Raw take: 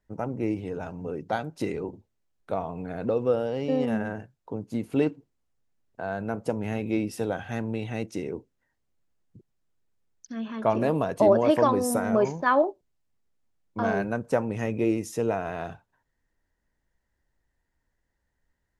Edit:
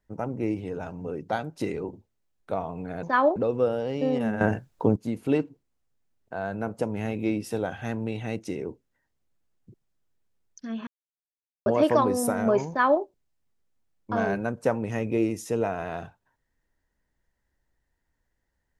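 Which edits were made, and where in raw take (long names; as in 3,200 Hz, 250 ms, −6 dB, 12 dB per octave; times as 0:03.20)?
0:04.08–0:04.63: clip gain +12 dB
0:10.54–0:11.33: silence
0:12.36–0:12.69: duplicate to 0:03.03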